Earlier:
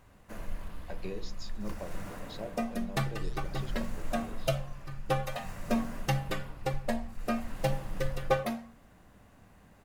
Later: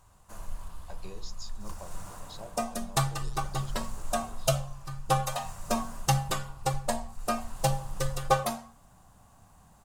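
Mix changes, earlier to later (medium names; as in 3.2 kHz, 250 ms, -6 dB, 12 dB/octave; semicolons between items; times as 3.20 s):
second sound +6.5 dB; master: add graphic EQ 250/500/1000/2000/8000 Hz -10/-6/+6/-10/+9 dB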